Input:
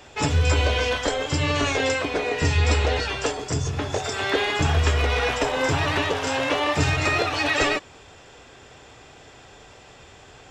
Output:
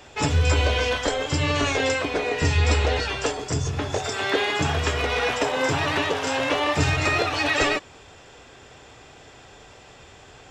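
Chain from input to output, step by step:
0:04.13–0:06.40: high-pass filter 110 Hz 12 dB per octave

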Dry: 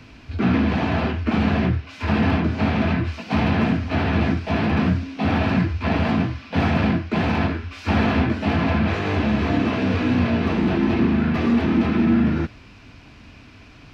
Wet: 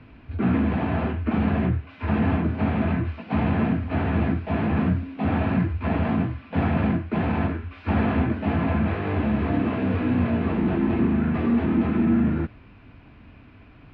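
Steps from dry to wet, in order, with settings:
high-frequency loss of the air 460 metres
level −2 dB

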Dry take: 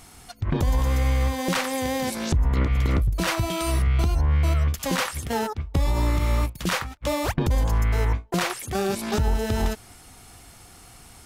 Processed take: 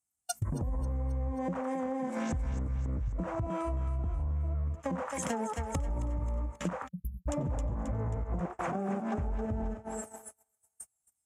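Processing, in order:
0:06.94–0:09.00: delay that plays each chunk backwards 162 ms, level 0 dB
noise reduction from a noise print of the clip's start 21 dB
treble cut that deepens with the level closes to 700 Hz, closed at −21 dBFS
parametric band 380 Hz −10 dB 0.3 octaves
brickwall limiter −19 dBFS, peak gain reduction 10 dB
high-pass filter 45 Hz 24 dB per octave
feedback echo with a high-pass in the loop 268 ms, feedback 53%, high-pass 530 Hz, level −6 dB
0:06.88–0:07.29: time-frequency box erased 210–11,000 Hz
downward compressor 6 to 1, threshold −40 dBFS, peak gain reduction 18 dB
high shelf with overshoot 5,600 Hz +10 dB, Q 3
noise gate −48 dBFS, range −36 dB
level +8.5 dB

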